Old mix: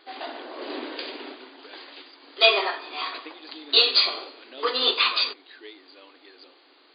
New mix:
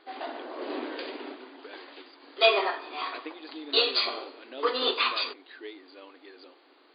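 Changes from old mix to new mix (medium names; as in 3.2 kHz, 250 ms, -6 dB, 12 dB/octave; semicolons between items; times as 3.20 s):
speech +3.5 dB; master: add treble shelf 3.1 kHz -11.5 dB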